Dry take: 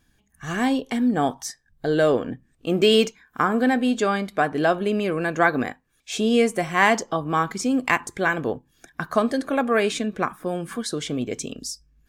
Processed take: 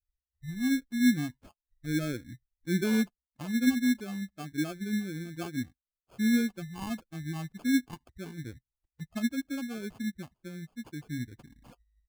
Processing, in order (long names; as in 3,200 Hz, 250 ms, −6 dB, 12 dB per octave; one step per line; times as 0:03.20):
spectral dynamics exaggerated over time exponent 2
drawn EQ curve 300 Hz 0 dB, 460 Hz −18 dB, 1,600 Hz −23 dB, 5,500 Hz −17 dB, 8,600 Hz −21 dB
decimation without filtering 23×